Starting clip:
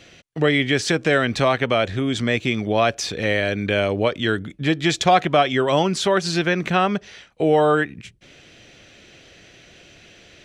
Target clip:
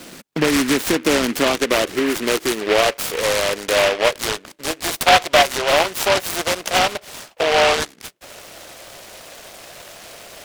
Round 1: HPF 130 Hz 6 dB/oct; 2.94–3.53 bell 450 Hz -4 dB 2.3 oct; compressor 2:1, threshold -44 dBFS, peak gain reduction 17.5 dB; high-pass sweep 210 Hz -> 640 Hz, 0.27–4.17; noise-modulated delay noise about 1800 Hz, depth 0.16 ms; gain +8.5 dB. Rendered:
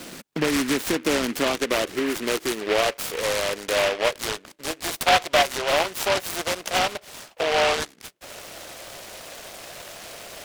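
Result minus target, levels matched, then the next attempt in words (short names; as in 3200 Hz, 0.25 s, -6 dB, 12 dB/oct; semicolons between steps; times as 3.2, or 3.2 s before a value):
compressor: peak gain reduction +5.5 dB
HPF 130 Hz 6 dB/oct; 2.94–3.53 bell 450 Hz -4 dB 2.3 oct; compressor 2:1, threshold -33 dBFS, peak gain reduction 12 dB; high-pass sweep 210 Hz -> 640 Hz, 0.27–4.17; noise-modulated delay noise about 1800 Hz, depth 0.16 ms; gain +8.5 dB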